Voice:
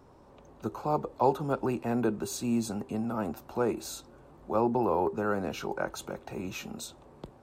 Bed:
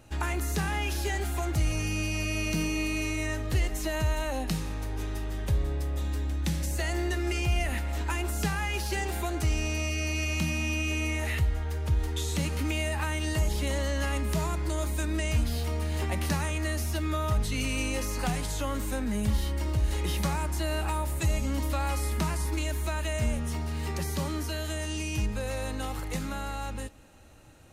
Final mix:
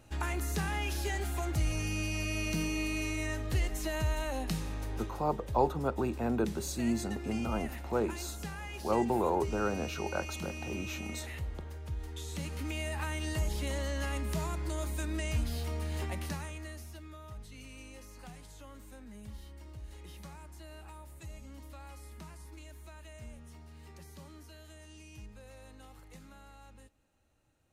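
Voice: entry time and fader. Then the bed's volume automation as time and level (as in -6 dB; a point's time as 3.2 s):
4.35 s, -2.5 dB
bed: 4.96 s -4 dB
5.22 s -12 dB
11.97 s -12 dB
13.02 s -5.5 dB
15.99 s -5.5 dB
17.14 s -19.5 dB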